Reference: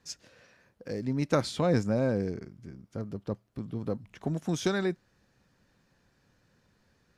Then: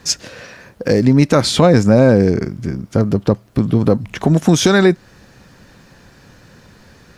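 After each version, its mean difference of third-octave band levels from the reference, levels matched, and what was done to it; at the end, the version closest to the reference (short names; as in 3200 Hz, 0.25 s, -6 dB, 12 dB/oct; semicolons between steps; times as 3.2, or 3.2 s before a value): 3.0 dB: compressor 2:1, threshold -33 dBFS, peak gain reduction 7.5 dB; maximiser +24 dB; gain -1 dB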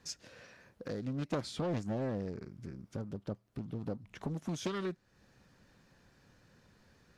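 4.0 dB: compressor 2:1, threshold -46 dBFS, peak gain reduction 14 dB; Doppler distortion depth 0.49 ms; gain +3.5 dB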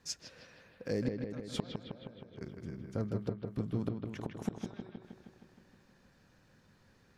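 10.0 dB: flipped gate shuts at -22 dBFS, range -30 dB; analogue delay 0.157 s, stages 4096, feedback 66%, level -5.5 dB; gain +1 dB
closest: first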